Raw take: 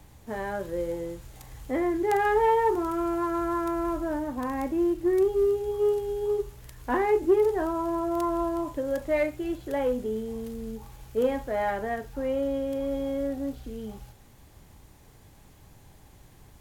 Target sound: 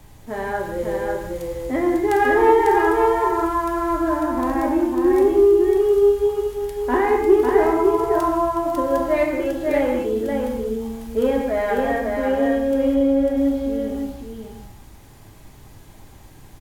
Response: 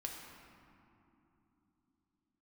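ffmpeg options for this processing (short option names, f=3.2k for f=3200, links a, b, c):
-filter_complex "[0:a]asettb=1/sr,asplit=3[a][b][c];[a]atrim=end=12.944[d];[b]atrim=start=12.94:end=13.37,asetpts=PTS-STARTPTS,afade=t=in:d=0.004:c=qsin,afade=t=out:st=0.426:d=0.004:c=qsin,highshelf=f=3.8k:g=-11.5[e];[c]atrim=start=13.366[f];[d][e]acrossfade=d=0.004:c1=hsin:c2=qsin[g];[g][f]acrossfade=d=0.004:c1=qsin:c2=hsin,aecho=1:1:548:0.668[h];[1:a]atrim=start_sample=2205,afade=t=out:st=0.27:d=0.01,atrim=end_sample=12348[i];[h][i]afir=irnorm=-1:irlink=0,volume=8.5dB"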